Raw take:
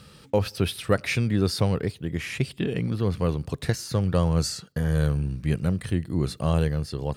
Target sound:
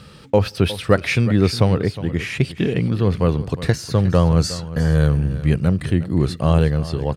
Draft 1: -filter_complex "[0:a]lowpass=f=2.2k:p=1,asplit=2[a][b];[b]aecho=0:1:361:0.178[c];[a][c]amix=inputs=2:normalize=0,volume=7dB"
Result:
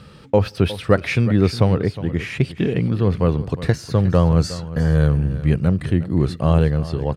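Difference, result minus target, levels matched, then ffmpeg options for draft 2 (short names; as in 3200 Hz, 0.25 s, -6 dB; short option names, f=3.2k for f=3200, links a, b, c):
4000 Hz band -3.5 dB
-filter_complex "[0:a]lowpass=f=4.7k:p=1,asplit=2[a][b];[b]aecho=0:1:361:0.178[c];[a][c]amix=inputs=2:normalize=0,volume=7dB"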